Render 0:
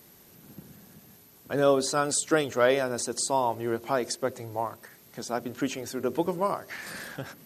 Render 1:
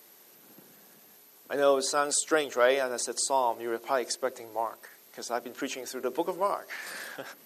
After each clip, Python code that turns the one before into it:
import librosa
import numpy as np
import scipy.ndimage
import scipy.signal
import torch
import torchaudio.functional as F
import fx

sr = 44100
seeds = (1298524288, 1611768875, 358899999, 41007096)

y = scipy.signal.sosfilt(scipy.signal.butter(2, 390.0, 'highpass', fs=sr, output='sos'), x)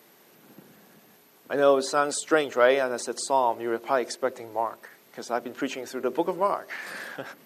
y = fx.bass_treble(x, sr, bass_db=5, treble_db=-8)
y = y * 10.0 ** (3.5 / 20.0)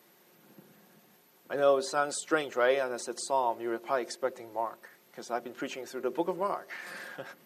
y = x + 0.36 * np.pad(x, (int(5.6 * sr / 1000.0), 0))[:len(x)]
y = y * 10.0 ** (-6.0 / 20.0)